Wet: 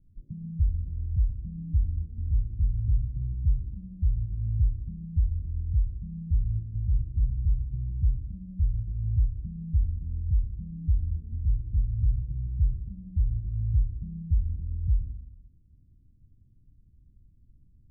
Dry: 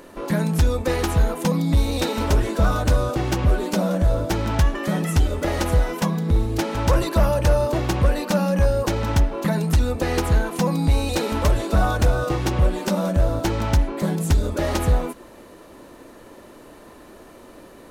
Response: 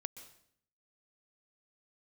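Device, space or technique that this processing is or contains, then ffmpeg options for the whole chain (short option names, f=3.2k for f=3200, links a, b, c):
club heard from the street: -filter_complex "[0:a]alimiter=limit=-15dB:level=0:latency=1:release=135,lowpass=f=120:w=0.5412,lowpass=f=120:w=1.3066[a];[1:a]atrim=start_sample=2205[b];[a][b]afir=irnorm=-1:irlink=0,volume=2dB"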